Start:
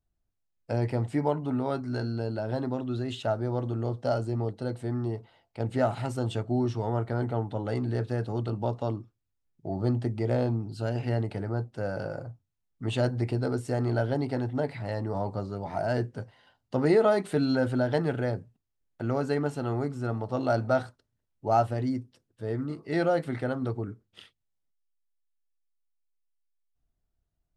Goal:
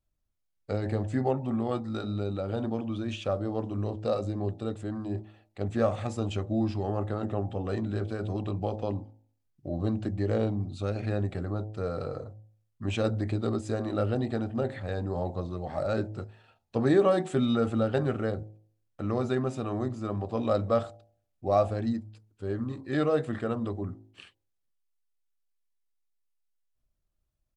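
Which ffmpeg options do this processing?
-af "bandreject=f=60.03:t=h:w=4,bandreject=f=120.06:t=h:w=4,bandreject=f=180.09:t=h:w=4,bandreject=f=240.12:t=h:w=4,bandreject=f=300.15:t=h:w=4,bandreject=f=360.18:t=h:w=4,bandreject=f=420.21:t=h:w=4,bandreject=f=480.24:t=h:w=4,bandreject=f=540.27:t=h:w=4,bandreject=f=600.3:t=h:w=4,bandreject=f=660.33:t=h:w=4,bandreject=f=720.36:t=h:w=4,bandreject=f=780.39:t=h:w=4,bandreject=f=840.42:t=h:w=4,bandreject=f=900.45:t=h:w=4,bandreject=f=960.48:t=h:w=4,bandreject=f=1.02051k:t=h:w=4,bandreject=f=1.08054k:t=h:w=4,asetrate=39289,aresample=44100,atempo=1.12246"

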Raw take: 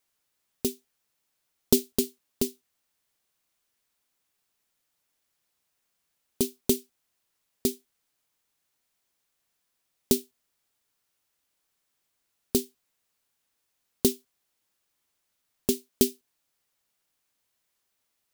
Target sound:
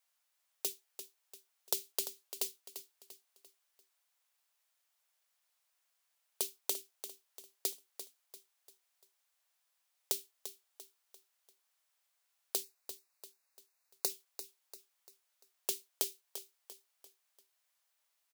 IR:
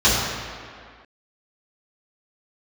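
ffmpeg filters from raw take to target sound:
-filter_complex "[0:a]highpass=f=580:w=0.5412,highpass=f=580:w=1.3066,acompressor=threshold=-27dB:ratio=10,asettb=1/sr,asplit=3[a][b][c];[a]atrim=end=12.634[d];[b]atrim=start=12.63:end=14.1,asetpts=PTS-STARTPTS,afade=t=in:d=0.004:c=qsin,afade=t=out:st=1.466:d=0.004:c=qsin,asuperstop=centerf=3200:order=4:qfactor=3.2[e];[c]atrim=start=14.096[f];[d][e]acrossfade=d=0.004:c1=hsin:c2=qsin[g];[g][f]acrossfade=d=0.004:c1=qsin:c2=hsin,aecho=1:1:344|688|1032|1376:0.282|0.118|0.0497|0.0209,volume=-2.5dB"

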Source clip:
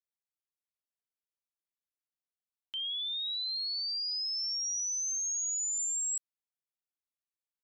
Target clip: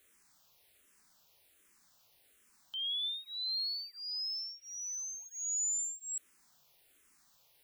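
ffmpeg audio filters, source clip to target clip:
-filter_complex "[0:a]aeval=exprs='val(0)+0.5*0.002*sgn(val(0))':c=same,asettb=1/sr,asplit=3[a][b][c];[a]atrim=end=3.034[d];[b]atrim=start=3.03:end=5.26,asetpts=PTS-STARTPTS,afade=t=in:d=0.004:c=qsin,afade=t=out:st=2.226:d=0.004:c=qsin,equalizer=f=100:t=o:w=0.67:g=8,equalizer=f=1k:t=o:w=0.67:g=6,equalizer=f=2.5k:t=o:w=0.67:g=9,equalizer=f=6.3k:t=o:w=0.67:g=-7[e];[c]atrim=start=5.256[f];[d][e]acrossfade=d=0.004:c1=hsin:c2=qsin[g];[g][f]acrossfade=d=0.004:c1=qsin:c2=hsin,asplit=2[h][i];[i]afreqshift=-1.3[j];[h][j]amix=inputs=2:normalize=1"

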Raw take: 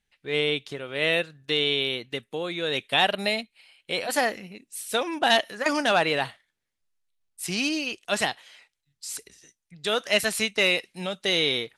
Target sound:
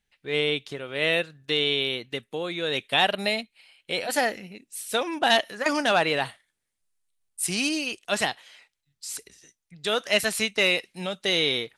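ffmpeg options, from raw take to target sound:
-filter_complex "[0:a]asettb=1/sr,asplit=3[a][b][c];[a]atrim=end=3.924[d];[b]atrim=start=3.92:end=4.66,asetpts=PTS-STARTPTS,afade=t=in:d=0.004:c=qsin,afade=t=out:st=0.736:d=0.004:c=qsin,bandreject=f=1.1k:w=7.9[e];[c]atrim=start=4.656[f];[d][e]acrossfade=d=0.004:c1=hsin:c2=qsin[g];[g][f]acrossfade=d=0.004:c1=qsin:c2=hsin,asettb=1/sr,asplit=3[h][i][j];[h]atrim=end=6.264[k];[i]atrim=start=6.26:end=7.99,asetpts=PTS-STARTPTS,afade=t=in:d=0.004:c=qsin,afade=t=out:st=1.726:d=0.004:c=qsin,equalizer=f=9.2k:t=o:w=0.58:g=9.5[l];[j]atrim=start=7.986[m];[k][l]acrossfade=d=0.004:c1=hsin:c2=qsin[n];[n][m]acrossfade=d=0.004:c1=qsin:c2=hsin"

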